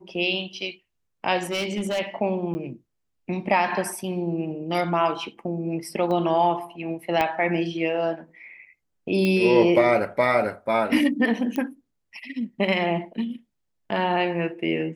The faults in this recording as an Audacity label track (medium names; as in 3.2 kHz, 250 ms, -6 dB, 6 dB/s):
1.390000	2.000000	clipped -22 dBFS
2.540000	2.550000	dropout 10 ms
6.110000	6.110000	dropout 2.4 ms
7.210000	7.210000	pop -10 dBFS
9.250000	9.250000	pop -13 dBFS
11.560000	11.560000	pop -16 dBFS